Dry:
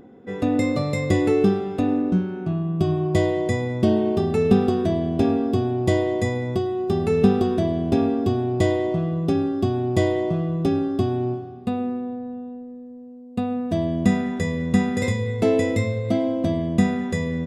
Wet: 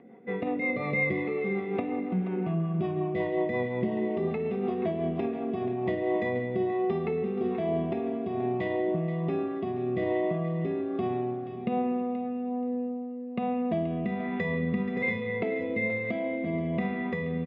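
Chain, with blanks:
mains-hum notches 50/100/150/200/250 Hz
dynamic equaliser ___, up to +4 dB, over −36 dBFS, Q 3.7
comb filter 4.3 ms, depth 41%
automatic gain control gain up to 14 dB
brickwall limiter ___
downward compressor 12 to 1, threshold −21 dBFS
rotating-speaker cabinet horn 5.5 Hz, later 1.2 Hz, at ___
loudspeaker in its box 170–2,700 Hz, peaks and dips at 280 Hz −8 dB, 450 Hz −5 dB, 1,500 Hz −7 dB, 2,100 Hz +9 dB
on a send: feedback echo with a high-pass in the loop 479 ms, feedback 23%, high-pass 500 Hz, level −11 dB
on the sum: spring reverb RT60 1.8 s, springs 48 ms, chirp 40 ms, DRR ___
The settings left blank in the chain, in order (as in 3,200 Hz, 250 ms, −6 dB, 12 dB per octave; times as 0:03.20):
370 Hz, −8.5 dBFS, 0:05.42, 10.5 dB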